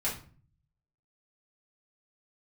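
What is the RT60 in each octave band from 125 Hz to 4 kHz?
1.0 s, 0.65 s, 0.45 s, 0.40 s, 0.35 s, 0.30 s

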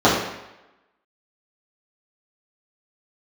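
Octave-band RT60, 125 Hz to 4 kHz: 0.75 s, 0.85 s, 0.95 s, 0.95 s, 0.95 s, 0.85 s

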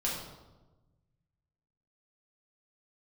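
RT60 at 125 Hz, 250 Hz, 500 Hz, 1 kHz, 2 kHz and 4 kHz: 2.1 s, 1.5 s, 1.2 s, 1.1 s, 0.75 s, 0.75 s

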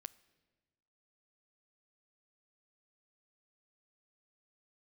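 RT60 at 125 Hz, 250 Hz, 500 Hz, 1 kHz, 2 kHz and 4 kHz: 1.6 s, 1.5 s, 1.4 s, 1.3 s, 1.2 s, 1.1 s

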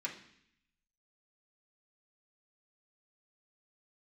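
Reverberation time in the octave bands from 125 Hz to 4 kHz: 1.0 s, 0.90 s, 0.65 s, 0.70 s, 0.85 s, 0.80 s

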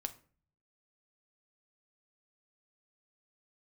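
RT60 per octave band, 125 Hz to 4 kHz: 0.95 s, 0.60 s, 0.45 s, 0.40 s, 0.35 s, 0.30 s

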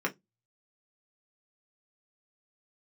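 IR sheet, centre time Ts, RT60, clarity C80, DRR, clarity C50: 9 ms, 0.15 s, 35.0 dB, -1.5 dB, 22.0 dB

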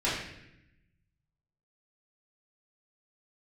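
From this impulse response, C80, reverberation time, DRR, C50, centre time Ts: 4.5 dB, 0.85 s, -9.5 dB, 2.0 dB, 59 ms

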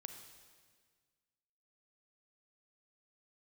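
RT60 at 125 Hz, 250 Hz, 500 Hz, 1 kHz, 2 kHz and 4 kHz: 2.0 s, 1.9 s, 1.7 s, 1.6 s, 1.6 s, 1.6 s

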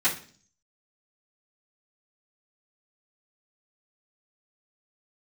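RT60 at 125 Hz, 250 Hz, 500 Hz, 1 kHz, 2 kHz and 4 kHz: 0.70 s, 0.65 s, 0.50 s, 0.40 s, 0.45 s, 0.50 s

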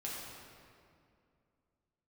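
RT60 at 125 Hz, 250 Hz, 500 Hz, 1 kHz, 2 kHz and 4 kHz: 2.9 s, 2.9 s, 2.5 s, 2.2 s, 1.9 s, 1.5 s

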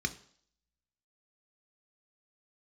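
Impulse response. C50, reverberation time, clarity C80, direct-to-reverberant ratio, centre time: 16.5 dB, 0.55 s, 19.5 dB, 7.5 dB, 5 ms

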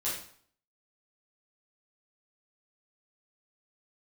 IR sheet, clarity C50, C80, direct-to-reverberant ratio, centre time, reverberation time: 3.5 dB, 8.0 dB, -10.0 dB, 44 ms, 0.55 s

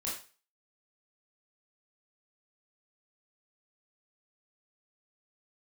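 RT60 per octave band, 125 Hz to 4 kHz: 0.35 s, 0.30 s, 0.35 s, 0.35 s, 0.35 s, 0.35 s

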